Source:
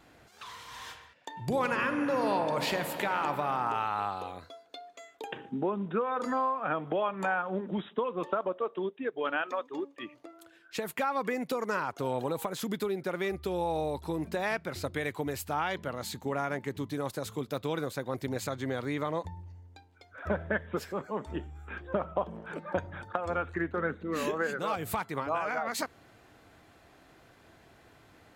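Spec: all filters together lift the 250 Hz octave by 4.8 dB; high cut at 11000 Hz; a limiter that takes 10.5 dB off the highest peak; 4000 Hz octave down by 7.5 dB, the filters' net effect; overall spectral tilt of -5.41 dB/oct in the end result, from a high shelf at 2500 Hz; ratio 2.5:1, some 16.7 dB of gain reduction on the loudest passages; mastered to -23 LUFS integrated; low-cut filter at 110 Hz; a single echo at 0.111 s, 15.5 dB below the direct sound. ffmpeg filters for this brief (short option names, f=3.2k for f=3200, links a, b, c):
-af "highpass=110,lowpass=11k,equalizer=f=250:t=o:g=6.5,highshelf=f=2.5k:g=-7,equalizer=f=4k:t=o:g=-3.5,acompressor=threshold=-50dB:ratio=2.5,alimiter=level_in=13.5dB:limit=-24dB:level=0:latency=1,volume=-13.5dB,aecho=1:1:111:0.168,volume=25.5dB"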